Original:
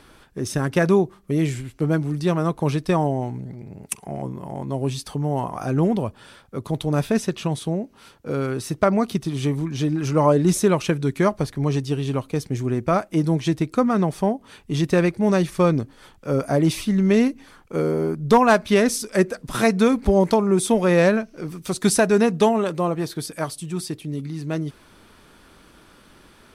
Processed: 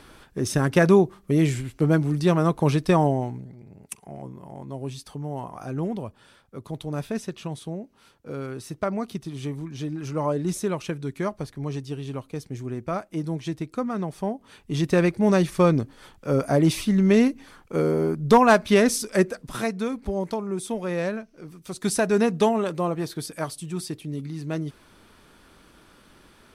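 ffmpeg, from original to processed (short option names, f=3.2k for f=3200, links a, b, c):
-af "volume=16.5dB,afade=t=out:st=3.08:d=0.42:silence=0.334965,afade=t=in:st=14.11:d=1.08:silence=0.398107,afade=t=out:st=19.08:d=0.66:silence=0.316228,afade=t=in:st=21.65:d=0.55:silence=0.421697"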